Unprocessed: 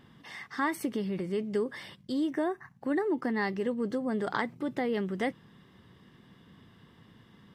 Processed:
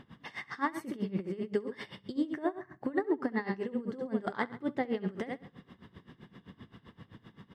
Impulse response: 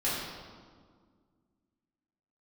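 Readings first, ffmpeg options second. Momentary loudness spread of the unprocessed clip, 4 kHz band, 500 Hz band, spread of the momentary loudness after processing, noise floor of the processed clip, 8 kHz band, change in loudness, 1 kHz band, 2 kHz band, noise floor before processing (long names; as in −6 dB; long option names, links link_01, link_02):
7 LU, −5.0 dB, −3.5 dB, 22 LU, −67 dBFS, can't be measured, −3.5 dB, −2.5 dB, −4.0 dB, −59 dBFS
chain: -filter_complex "[0:a]lowpass=frequency=3200:poles=1,acompressor=threshold=-43dB:ratio=1.5,aecho=1:1:67|134|201|268:0.398|0.139|0.0488|0.0171,asplit=2[link_01][link_02];[1:a]atrim=start_sample=2205[link_03];[link_02][link_03]afir=irnorm=-1:irlink=0,volume=-31.5dB[link_04];[link_01][link_04]amix=inputs=2:normalize=0,aeval=exprs='val(0)*pow(10,-20*(0.5-0.5*cos(2*PI*7.7*n/s))/20)':channel_layout=same,volume=7.5dB"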